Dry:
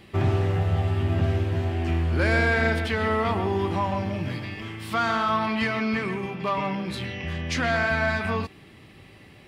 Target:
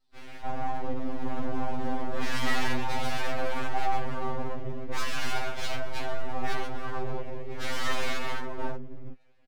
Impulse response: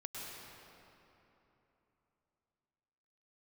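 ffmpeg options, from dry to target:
-filter_complex "[0:a]afwtdn=0.0447,adynamicequalizer=threshold=0.00891:dfrequency=1300:dqfactor=2.7:tfrequency=1300:tqfactor=2.7:attack=5:release=100:ratio=0.375:range=3.5:mode=boostabove:tftype=bell,acrossover=split=240|720|1800[link_01][link_02][link_03][link_04];[link_02]dynaudnorm=framelen=390:gausssize=7:maxgain=6.5dB[link_05];[link_03]flanger=delay=1.4:depth=9.8:regen=-65:speed=1.8:shape=sinusoidal[link_06];[link_01][link_05][link_06][link_04]amix=inputs=4:normalize=0,highpass=100,equalizer=frequency=150:width_type=q:width=4:gain=10,equalizer=frequency=360:width_type=q:width=4:gain=9,equalizer=frequency=1900:width_type=q:width=4:gain=6,lowpass=frequency=2700:width=0.5412,lowpass=frequency=2700:width=1.3066,asoftclip=type=hard:threshold=-22.5dB,acrossover=split=170|850[link_07][link_08][link_09];[link_08]adelay=300[link_10];[link_07]adelay=660[link_11];[link_11][link_10][link_09]amix=inputs=3:normalize=0,aeval=exprs='abs(val(0))':channel_layout=same,afftfilt=real='re*2.45*eq(mod(b,6),0)':imag='im*2.45*eq(mod(b,6),0)':win_size=2048:overlap=0.75"

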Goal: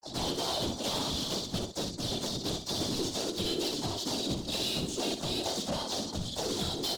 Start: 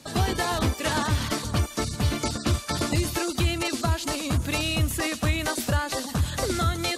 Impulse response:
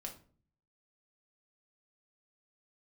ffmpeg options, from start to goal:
-filter_complex "[0:a]flanger=delay=0.7:depth=4.6:regen=-77:speed=0.34:shape=triangular,highpass=frequency=130:width=0.5412,highpass=frequency=130:width=1.3066,bandreject=frequency=60:width_type=h:width=6,bandreject=frequency=120:width_type=h:width=6,bandreject=frequency=180:width_type=h:width=6,bandreject=frequency=240:width_type=h:width=6,bandreject=frequency=300:width_type=h:width=6,bandreject=frequency=360:width_type=h:width=6,anlmdn=2.51,firequalizer=gain_entry='entry(630,0);entry(1300,-15);entry(1900,-25);entry(3300,13)':delay=0.05:min_phase=1,acontrast=26,aresample=16000,aeval=exprs='sgn(val(0))*max(abs(val(0))-0.00211,0)':channel_layout=same,aresample=44100,acrossover=split=3300[link_01][link_02];[link_02]acompressor=threshold=-37dB:ratio=4:attack=1:release=60[link_03];[link_01][link_03]amix=inputs=2:normalize=0,asoftclip=type=tanh:threshold=-28.5dB,afftfilt=real='hypot(re,im)*cos(2*PI*random(0))':imag='hypot(re,im)*sin(2*PI*random(1))':win_size=512:overlap=0.75,asplit=3[link_04][link_05][link_06];[link_05]asetrate=52444,aresample=44100,atempo=0.840896,volume=-7dB[link_07];[link_06]asetrate=58866,aresample=44100,atempo=0.749154,volume=-9dB[link_08];[link_04][link_07][link_08]amix=inputs=3:normalize=0,aecho=1:1:61|305:0.422|0.188,volume=4dB"

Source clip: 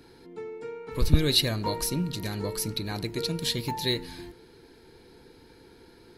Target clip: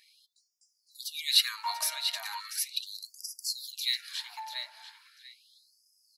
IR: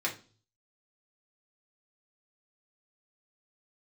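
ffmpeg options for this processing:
-filter_complex "[0:a]asplit=2[link_01][link_02];[link_02]adelay=690,lowpass=frequency=4800:poles=1,volume=-6dB,asplit=2[link_03][link_04];[link_04]adelay=690,lowpass=frequency=4800:poles=1,volume=0.25,asplit=2[link_05][link_06];[link_06]adelay=690,lowpass=frequency=4800:poles=1,volume=0.25[link_07];[link_01][link_03][link_05][link_07]amix=inputs=4:normalize=0,afftfilt=real='re*gte(b*sr/1024,560*pow(4800/560,0.5+0.5*sin(2*PI*0.38*pts/sr)))':imag='im*gte(b*sr/1024,560*pow(4800/560,0.5+0.5*sin(2*PI*0.38*pts/sr)))':win_size=1024:overlap=0.75"

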